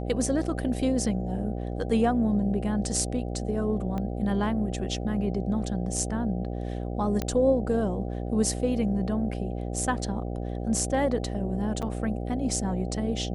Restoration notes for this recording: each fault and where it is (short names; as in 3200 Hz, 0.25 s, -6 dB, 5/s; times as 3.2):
buzz 60 Hz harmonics 13 -32 dBFS
3.98 pop -21 dBFS
7.22 pop -14 dBFS
11.82–11.83 gap 6.4 ms